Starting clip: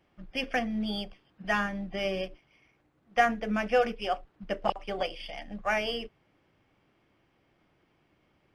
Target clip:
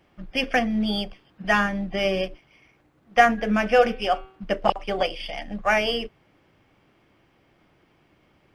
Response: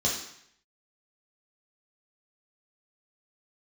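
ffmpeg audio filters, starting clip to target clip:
-filter_complex "[0:a]asplit=3[link_01][link_02][link_03];[link_01]afade=type=out:start_time=3.37:duration=0.02[link_04];[link_02]bandreject=frequency=127.1:width_type=h:width=4,bandreject=frequency=254.2:width_type=h:width=4,bandreject=frequency=381.3:width_type=h:width=4,bandreject=frequency=508.4:width_type=h:width=4,bandreject=frequency=635.5:width_type=h:width=4,bandreject=frequency=762.6:width_type=h:width=4,bandreject=frequency=889.7:width_type=h:width=4,bandreject=frequency=1016.8:width_type=h:width=4,bandreject=frequency=1143.9:width_type=h:width=4,bandreject=frequency=1271:width_type=h:width=4,bandreject=frequency=1398.1:width_type=h:width=4,bandreject=frequency=1525.2:width_type=h:width=4,bandreject=frequency=1652.3:width_type=h:width=4,bandreject=frequency=1779.4:width_type=h:width=4,bandreject=frequency=1906.5:width_type=h:width=4,bandreject=frequency=2033.6:width_type=h:width=4,bandreject=frequency=2160.7:width_type=h:width=4,bandreject=frequency=2287.8:width_type=h:width=4,bandreject=frequency=2414.9:width_type=h:width=4,bandreject=frequency=2542:width_type=h:width=4,bandreject=frequency=2669.1:width_type=h:width=4,bandreject=frequency=2796.2:width_type=h:width=4,bandreject=frequency=2923.3:width_type=h:width=4,bandreject=frequency=3050.4:width_type=h:width=4,bandreject=frequency=3177.5:width_type=h:width=4,bandreject=frequency=3304.6:width_type=h:width=4,bandreject=frequency=3431.7:width_type=h:width=4,bandreject=frequency=3558.8:width_type=h:width=4,bandreject=frequency=3685.9:width_type=h:width=4,bandreject=frequency=3813:width_type=h:width=4,bandreject=frequency=3940.1:width_type=h:width=4,bandreject=frequency=4067.2:width_type=h:width=4,bandreject=frequency=4194.3:width_type=h:width=4,bandreject=frequency=4321.4:width_type=h:width=4,bandreject=frequency=4448.5:width_type=h:width=4,bandreject=frequency=4575.6:width_type=h:width=4,afade=type=in:start_time=3.37:duration=0.02,afade=type=out:start_time=4.48:duration=0.02[link_05];[link_03]afade=type=in:start_time=4.48:duration=0.02[link_06];[link_04][link_05][link_06]amix=inputs=3:normalize=0,volume=7.5dB"

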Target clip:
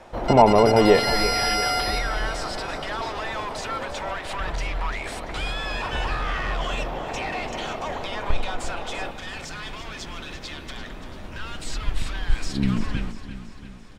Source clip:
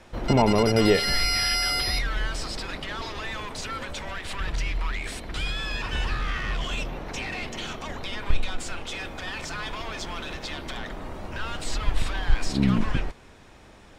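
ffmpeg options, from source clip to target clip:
ffmpeg -i in.wav -af "asetnsamples=nb_out_samples=441:pad=0,asendcmd='9.11 equalizer g -4.5',equalizer=frequency=730:width_type=o:width=1.6:gain=10.5,aecho=1:1:341|682|1023|1364|1705|2046:0.251|0.138|0.076|0.0418|0.023|0.0126,volume=-1dB" out.wav

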